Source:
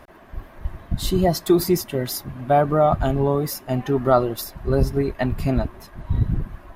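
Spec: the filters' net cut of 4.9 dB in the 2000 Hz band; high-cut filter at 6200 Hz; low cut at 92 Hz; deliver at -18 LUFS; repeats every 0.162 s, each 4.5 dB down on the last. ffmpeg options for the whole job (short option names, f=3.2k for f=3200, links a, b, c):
-af "highpass=92,lowpass=6.2k,equalizer=f=2k:t=o:g=-6.5,aecho=1:1:162|324|486|648|810|972|1134|1296|1458:0.596|0.357|0.214|0.129|0.0772|0.0463|0.0278|0.0167|0.01,volume=3dB"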